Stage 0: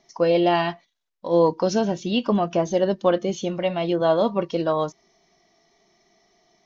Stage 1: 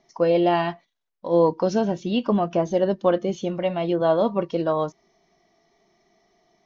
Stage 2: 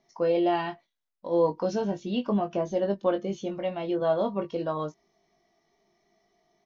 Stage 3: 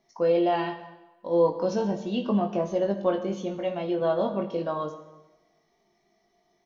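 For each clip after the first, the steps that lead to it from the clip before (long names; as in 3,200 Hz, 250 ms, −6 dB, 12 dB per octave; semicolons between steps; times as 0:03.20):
high-shelf EQ 2,900 Hz −8 dB
double-tracking delay 20 ms −6 dB; level −7 dB
dense smooth reverb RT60 1.1 s, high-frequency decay 0.85×, DRR 7.5 dB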